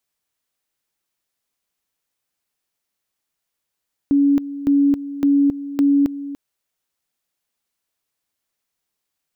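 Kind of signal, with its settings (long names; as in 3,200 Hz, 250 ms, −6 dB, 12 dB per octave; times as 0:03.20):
tone at two levels in turn 282 Hz −11.5 dBFS, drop 14.5 dB, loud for 0.27 s, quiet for 0.29 s, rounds 4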